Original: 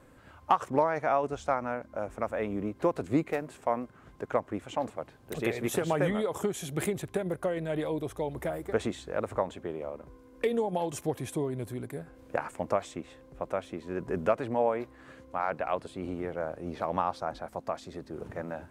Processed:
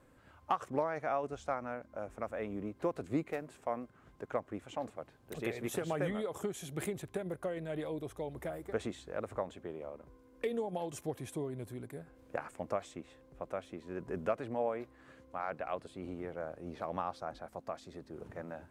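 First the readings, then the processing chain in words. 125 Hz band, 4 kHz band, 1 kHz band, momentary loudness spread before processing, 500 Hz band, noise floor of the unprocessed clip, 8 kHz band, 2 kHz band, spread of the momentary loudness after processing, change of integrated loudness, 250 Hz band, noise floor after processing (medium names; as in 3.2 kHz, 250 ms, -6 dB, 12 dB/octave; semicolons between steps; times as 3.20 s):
-7.0 dB, -7.0 dB, -8.0 dB, 11 LU, -7.0 dB, -56 dBFS, -7.0 dB, -7.0 dB, 11 LU, -7.5 dB, -7.0 dB, -63 dBFS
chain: dynamic bell 930 Hz, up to -5 dB, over -49 dBFS, Q 7.9; trim -7 dB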